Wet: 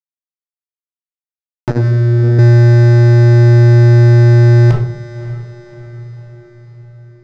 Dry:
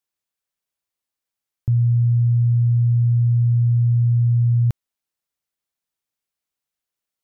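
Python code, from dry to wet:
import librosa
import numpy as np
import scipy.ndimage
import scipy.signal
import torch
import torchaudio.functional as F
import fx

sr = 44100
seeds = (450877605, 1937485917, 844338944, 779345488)

y = scipy.signal.sosfilt(scipy.signal.butter(2, 130.0, 'highpass', fs=sr, output='sos'), x)
y = fx.low_shelf(y, sr, hz=300.0, db=-11.5)
y = fx.fuzz(y, sr, gain_db=49.0, gate_db=-58.0)
y = fx.air_absorb(y, sr, metres=100.0)
y = fx.echo_diffused(y, sr, ms=591, feedback_pct=53, wet_db=-15)
y = fx.room_shoebox(y, sr, seeds[0], volume_m3=800.0, walls='furnished', distance_m=2.6)
y = fx.transformer_sat(y, sr, knee_hz=280.0, at=(1.7, 2.39))
y = y * 10.0 ** (2.5 / 20.0)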